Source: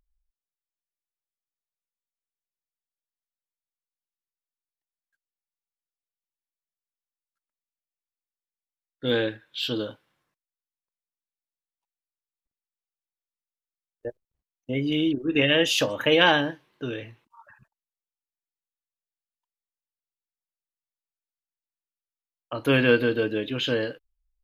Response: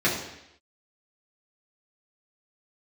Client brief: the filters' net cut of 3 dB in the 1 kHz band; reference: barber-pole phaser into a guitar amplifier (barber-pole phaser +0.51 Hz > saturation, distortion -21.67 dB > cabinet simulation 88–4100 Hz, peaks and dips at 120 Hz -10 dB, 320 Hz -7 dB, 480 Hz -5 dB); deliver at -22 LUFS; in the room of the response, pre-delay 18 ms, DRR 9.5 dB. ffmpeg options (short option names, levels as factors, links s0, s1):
-filter_complex "[0:a]equalizer=f=1000:t=o:g=-3.5,asplit=2[s0][s1];[1:a]atrim=start_sample=2205,adelay=18[s2];[s1][s2]afir=irnorm=-1:irlink=0,volume=0.0596[s3];[s0][s3]amix=inputs=2:normalize=0,asplit=2[s4][s5];[s5]afreqshift=0.51[s6];[s4][s6]amix=inputs=2:normalize=1,asoftclip=threshold=0.224,highpass=88,equalizer=f=120:t=q:w=4:g=-10,equalizer=f=320:t=q:w=4:g=-7,equalizer=f=480:t=q:w=4:g=-5,lowpass=f=4100:w=0.5412,lowpass=f=4100:w=1.3066,volume=2.24"